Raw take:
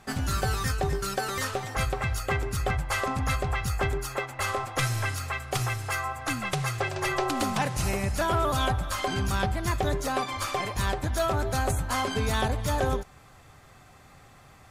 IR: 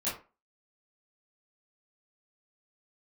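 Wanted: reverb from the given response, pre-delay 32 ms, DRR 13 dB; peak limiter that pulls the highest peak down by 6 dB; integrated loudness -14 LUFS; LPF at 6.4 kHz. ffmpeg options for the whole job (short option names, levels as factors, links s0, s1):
-filter_complex "[0:a]lowpass=6400,alimiter=limit=0.0708:level=0:latency=1,asplit=2[s0][s1];[1:a]atrim=start_sample=2205,adelay=32[s2];[s1][s2]afir=irnorm=-1:irlink=0,volume=0.119[s3];[s0][s3]amix=inputs=2:normalize=0,volume=7.94"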